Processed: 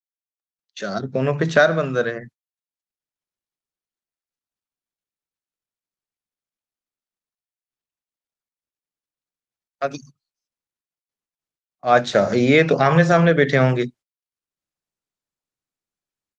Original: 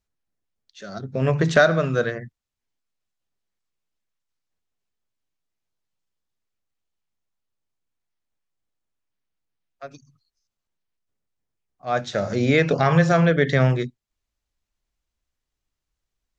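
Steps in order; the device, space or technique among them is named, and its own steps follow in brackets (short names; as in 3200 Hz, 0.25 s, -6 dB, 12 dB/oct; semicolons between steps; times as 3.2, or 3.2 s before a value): video call (HPF 160 Hz 12 dB/oct; AGC gain up to 15.5 dB; gate -40 dBFS, range -24 dB; gain -1 dB; Opus 24 kbps 48000 Hz)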